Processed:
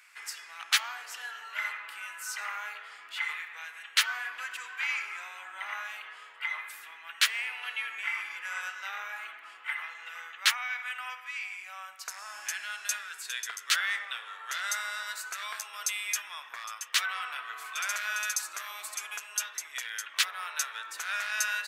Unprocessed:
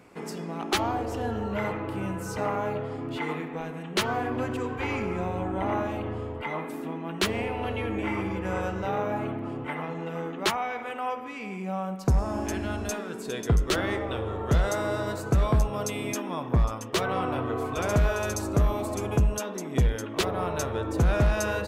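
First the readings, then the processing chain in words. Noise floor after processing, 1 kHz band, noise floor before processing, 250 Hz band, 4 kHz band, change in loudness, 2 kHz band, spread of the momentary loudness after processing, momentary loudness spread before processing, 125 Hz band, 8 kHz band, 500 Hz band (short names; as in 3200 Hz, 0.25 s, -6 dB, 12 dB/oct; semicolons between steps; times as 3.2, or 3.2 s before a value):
-50 dBFS, -8.0 dB, -37 dBFS, under -40 dB, +4.0 dB, -4.0 dB, +4.0 dB, 13 LU, 9 LU, under -40 dB, +4.5 dB, -28.0 dB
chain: Chebyshev high-pass 1600 Hz, order 3; gain +5 dB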